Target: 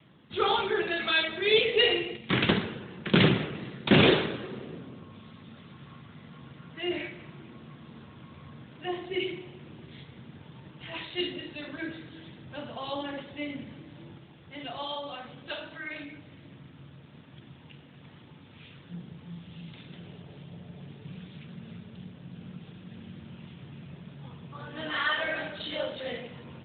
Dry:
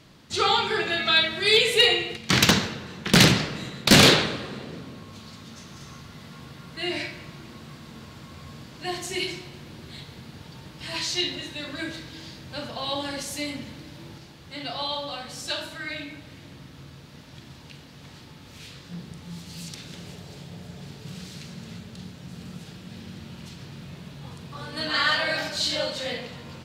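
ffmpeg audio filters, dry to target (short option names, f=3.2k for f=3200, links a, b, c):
-af "adynamicequalizer=threshold=0.00794:dfrequency=380:dqfactor=3.7:tfrequency=380:tqfactor=3.7:attack=5:release=100:ratio=0.375:range=3:mode=boostabove:tftype=bell,volume=-3.5dB" -ar 8000 -c:a libopencore_amrnb -b:a 12200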